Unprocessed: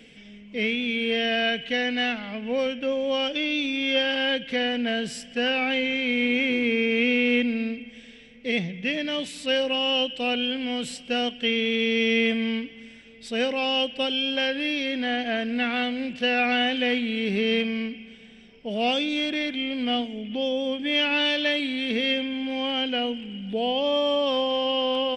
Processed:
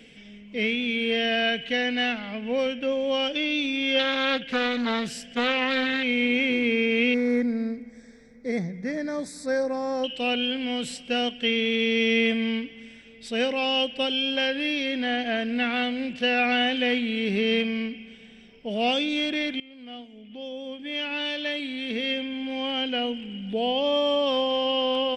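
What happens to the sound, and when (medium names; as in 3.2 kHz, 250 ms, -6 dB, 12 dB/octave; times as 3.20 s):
3.99–6.03 s: loudspeaker Doppler distortion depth 0.38 ms
7.14–10.04 s: Butterworth band-stop 2.9 kHz, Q 1.1
19.60–23.37 s: fade in, from -20.5 dB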